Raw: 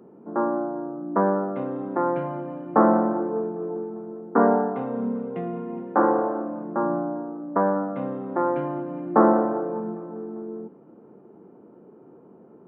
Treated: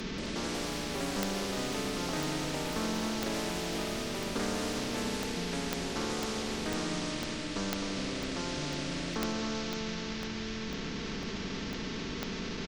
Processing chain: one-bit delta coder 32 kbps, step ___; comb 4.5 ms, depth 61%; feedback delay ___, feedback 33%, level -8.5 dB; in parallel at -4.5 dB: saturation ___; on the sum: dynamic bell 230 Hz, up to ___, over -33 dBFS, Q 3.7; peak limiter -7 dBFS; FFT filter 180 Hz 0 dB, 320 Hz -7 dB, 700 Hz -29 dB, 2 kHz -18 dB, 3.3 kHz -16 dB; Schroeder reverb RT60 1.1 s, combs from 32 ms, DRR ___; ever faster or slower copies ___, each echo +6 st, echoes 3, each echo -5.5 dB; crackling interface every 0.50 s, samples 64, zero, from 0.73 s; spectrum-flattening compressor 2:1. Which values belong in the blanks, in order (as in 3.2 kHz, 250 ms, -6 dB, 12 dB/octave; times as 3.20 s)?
-27.5 dBFS, 259 ms, -19 dBFS, -8 dB, 19 dB, 182 ms